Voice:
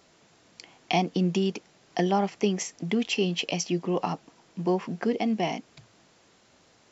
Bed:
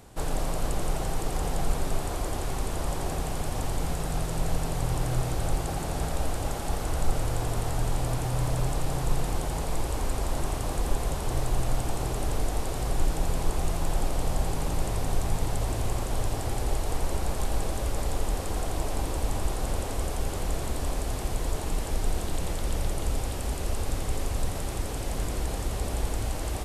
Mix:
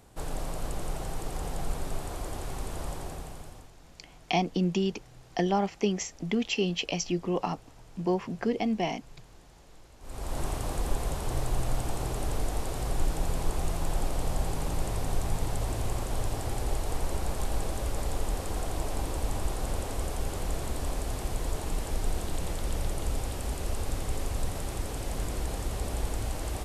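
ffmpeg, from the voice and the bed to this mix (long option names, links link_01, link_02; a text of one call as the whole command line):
ffmpeg -i stem1.wav -i stem2.wav -filter_complex "[0:a]adelay=3400,volume=-2dB[link_01];[1:a]volume=18dB,afade=type=out:start_time=2.84:duration=0.87:silence=0.0944061,afade=type=in:start_time=10:duration=0.42:silence=0.0668344[link_02];[link_01][link_02]amix=inputs=2:normalize=0" out.wav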